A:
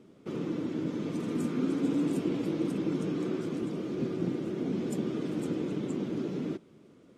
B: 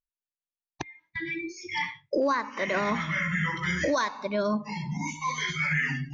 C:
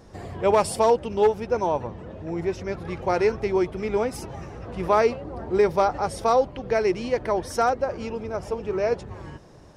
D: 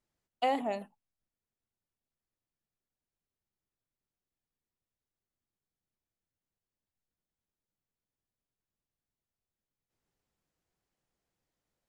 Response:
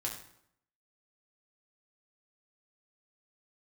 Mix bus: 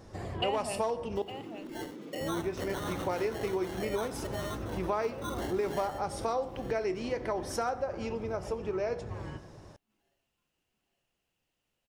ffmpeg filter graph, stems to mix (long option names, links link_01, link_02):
-filter_complex "[0:a]alimiter=level_in=3.5dB:limit=-24dB:level=0:latency=1,volume=-3.5dB,highpass=230,adelay=1000,volume=-7.5dB[link_01];[1:a]highpass=370,equalizer=frequency=1900:width_type=o:width=1.4:gain=5,acrusher=samples=18:mix=1:aa=0.000001,volume=-10dB,asplit=2[link_02][link_03];[link_03]volume=-19.5dB[link_04];[2:a]volume=-5dB,asplit=3[link_05][link_06][link_07];[link_05]atrim=end=1.22,asetpts=PTS-STARTPTS,afade=type=out:start_time=1.216:duration=0.004:curve=hsin[link_08];[link_06]atrim=start=1.22:end=2.21,asetpts=PTS-STARTPTS,volume=0[link_09];[link_07]atrim=start=2.21,asetpts=PTS-STARTPTS,afade=type=in:duration=0.004:curve=hsin[link_10];[link_08][link_09][link_10]concat=n=3:v=0:a=1,asplit=2[link_11][link_12];[link_12]volume=-6.5dB[link_13];[3:a]equalizer=frequency=2800:width_type=o:width=0.3:gain=14,volume=2.5dB,asplit=3[link_14][link_15][link_16];[link_15]volume=-16.5dB[link_17];[link_16]apad=whole_len=270714[link_18];[link_02][link_18]sidechaincompress=threshold=-38dB:ratio=4:attack=6.4:release=1410[link_19];[4:a]atrim=start_sample=2205[link_20];[link_13][link_20]afir=irnorm=-1:irlink=0[link_21];[link_04][link_17]amix=inputs=2:normalize=0,aecho=0:1:856|1712|2568|3424|4280|5136:1|0.45|0.202|0.0911|0.041|0.0185[link_22];[link_01][link_19][link_11][link_14][link_21][link_22]amix=inputs=6:normalize=0,acompressor=threshold=-31dB:ratio=3"